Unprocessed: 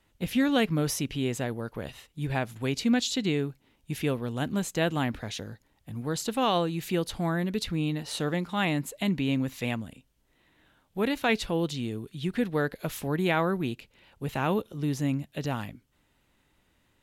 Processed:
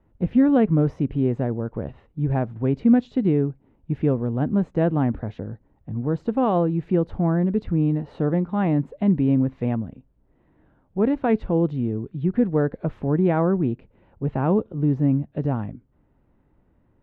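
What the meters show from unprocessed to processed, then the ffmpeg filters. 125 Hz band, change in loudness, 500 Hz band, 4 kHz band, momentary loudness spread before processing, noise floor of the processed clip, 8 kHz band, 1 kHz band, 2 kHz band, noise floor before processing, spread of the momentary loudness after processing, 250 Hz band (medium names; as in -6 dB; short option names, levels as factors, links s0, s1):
+8.5 dB, +6.5 dB, +6.0 dB, under -15 dB, 11 LU, -63 dBFS, under -30 dB, +2.5 dB, -7.0 dB, -69 dBFS, 10 LU, +8.0 dB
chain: -af "lowpass=1700,tiltshelf=f=1200:g=9"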